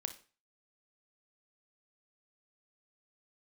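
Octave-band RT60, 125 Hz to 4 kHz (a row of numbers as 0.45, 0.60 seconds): 0.45, 0.35, 0.35, 0.35, 0.35, 0.35 seconds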